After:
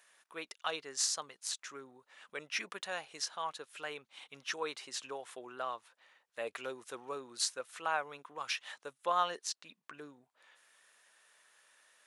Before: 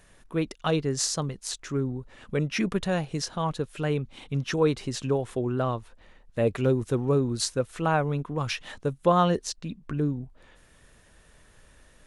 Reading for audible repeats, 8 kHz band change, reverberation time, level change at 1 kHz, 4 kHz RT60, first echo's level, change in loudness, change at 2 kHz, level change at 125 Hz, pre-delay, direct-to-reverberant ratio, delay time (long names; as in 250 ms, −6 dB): no echo audible, −4.5 dB, no reverb audible, −7.5 dB, no reverb audible, no echo audible, −11.0 dB, −5.0 dB, −36.5 dB, no reverb audible, no reverb audible, no echo audible